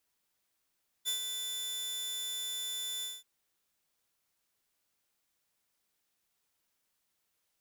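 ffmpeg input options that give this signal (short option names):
-f lavfi -i "aevalsrc='0.0447*(2*mod(3510*t,1)-1)':d=2.182:s=44100,afade=t=in:d=0.033,afade=t=out:st=0.033:d=0.104:silence=0.501,afade=t=out:st=1.98:d=0.202"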